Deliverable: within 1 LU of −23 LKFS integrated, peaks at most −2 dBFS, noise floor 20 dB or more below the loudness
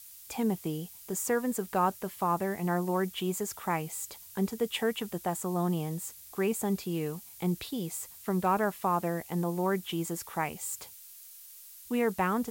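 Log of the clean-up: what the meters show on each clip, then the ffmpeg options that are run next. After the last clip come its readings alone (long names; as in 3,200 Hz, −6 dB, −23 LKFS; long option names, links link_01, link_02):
background noise floor −50 dBFS; target noise floor −52 dBFS; integrated loudness −32.0 LKFS; sample peak −16.0 dBFS; target loudness −23.0 LKFS
→ -af "afftdn=noise_reduction=6:noise_floor=-50"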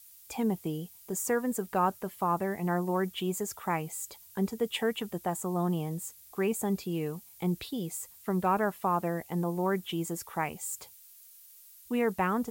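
background noise floor −55 dBFS; integrated loudness −32.0 LKFS; sample peak −16.0 dBFS; target loudness −23.0 LKFS
→ -af "volume=9dB"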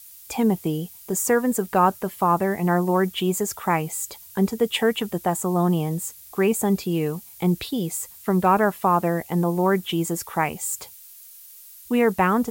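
integrated loudness −23.0 LKFS; sample peak −7.0 dBFS; background noise floor −46 dBFS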